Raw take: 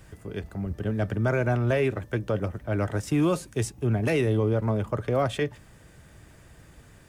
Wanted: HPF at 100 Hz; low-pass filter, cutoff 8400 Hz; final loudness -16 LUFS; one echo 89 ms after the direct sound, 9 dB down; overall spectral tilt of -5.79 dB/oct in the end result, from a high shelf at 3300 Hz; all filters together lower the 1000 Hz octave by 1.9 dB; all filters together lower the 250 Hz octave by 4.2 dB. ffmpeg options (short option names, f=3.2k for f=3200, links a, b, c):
-af "highpass=100,lowpass=8.4k,equalizer=f=250:t=o:g=-5.5,equalizer=f=1k:t=o:g=-3,highshelf=f=3.3k:g=6,aecho=1:1:89:0.355,volume=13dB"